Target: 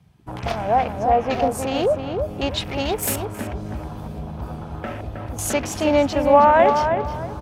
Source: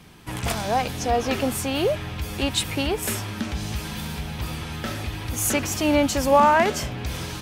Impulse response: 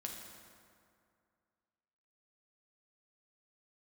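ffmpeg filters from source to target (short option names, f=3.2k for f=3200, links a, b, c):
-filter_complex "[0:a]asettb=1/sr,asplit=3[a][b][c];[a]atrim=end=2.854[d];[b]atrim=start=2.85:end=3.25,asetpts=PTS-STARTPTS,afade=t=in:d=0.004:c=qsin,afade=t=out:st=0.396:d=0.004:c=qsin,highshelf=f=7.7k:g=10[e];[c]atrim=start=3.246[f];[d][e]acrossfade=d=0.004:c1=hsin:c2=qsin[g];[g][f]acrossfade=d=0.004:c1=qsin:c2=hsin,afwtdn=0.02,equalizer=f=680:w=1.5:g=7.5,asplit=2[h][i];[i]adelay=316,lowpass=f=2k:p=1,volume=-5.5dB,asplit=2[j][k];[k]adelay=316,lowpass=f=2k:p=1,volume=0.3,asplit=2[l][m];[m]adelay=316,lowpass=f=2k:p=1,volume=0.3,asplit=2[n][o];[o]adelay=316,lowpass=f=2k:p=1,volume=0.3[p];[h][j][l][n][p]amix=inputs=5:normalize=0,volume=-1.5dB"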